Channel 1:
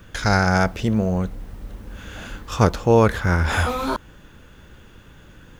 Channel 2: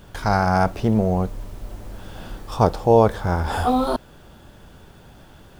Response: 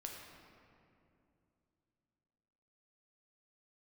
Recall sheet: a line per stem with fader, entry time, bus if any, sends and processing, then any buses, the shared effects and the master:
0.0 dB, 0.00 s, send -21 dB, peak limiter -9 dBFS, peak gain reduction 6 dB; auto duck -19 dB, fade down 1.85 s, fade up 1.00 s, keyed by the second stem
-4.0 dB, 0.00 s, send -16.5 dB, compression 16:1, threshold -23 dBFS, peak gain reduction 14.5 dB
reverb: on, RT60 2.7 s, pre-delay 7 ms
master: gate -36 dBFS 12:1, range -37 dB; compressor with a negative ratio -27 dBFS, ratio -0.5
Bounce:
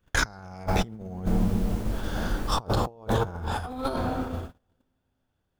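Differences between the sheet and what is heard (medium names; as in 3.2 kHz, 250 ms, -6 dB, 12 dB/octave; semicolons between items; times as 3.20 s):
stem 2: missing compression 16:1, threshold -23 dBFS, peak gain reduction 14.5 dB; reverb return +10.0 dB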